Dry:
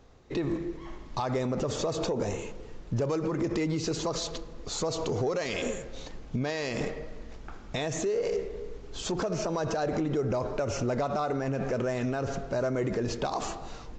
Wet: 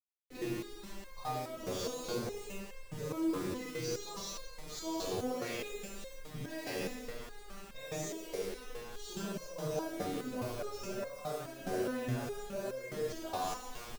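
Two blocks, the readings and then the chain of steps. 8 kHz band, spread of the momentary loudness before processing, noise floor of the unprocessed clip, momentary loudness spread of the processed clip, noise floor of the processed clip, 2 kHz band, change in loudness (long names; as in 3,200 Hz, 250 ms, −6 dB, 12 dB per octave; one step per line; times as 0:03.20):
−5.5 dB, 11 LU, −45 dBFS, 11 LU, −50 dBFS, −7.0 dB, −8.5 dB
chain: in parallel at +2 dB: brickwall limiter −28.5 dBFS, peak gain reduction 8 dB
on the sum: bit-depth reduction 6 bits, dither none
double-tracking delay 24 ms −13.5 dB
four-comb reverb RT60 0.73 s, combs from 31 ms, DRR −4 dB
step-sequenced resonator 4.8 Hz 93–530 Hz
level −5.5 dB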